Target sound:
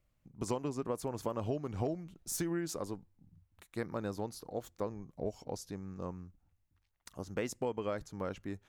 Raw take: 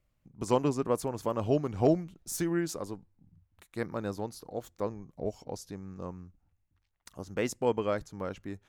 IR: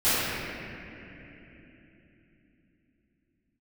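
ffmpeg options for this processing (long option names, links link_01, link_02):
-af "acompressor=threshold=-30dB:ratio=10,volume=-1dB"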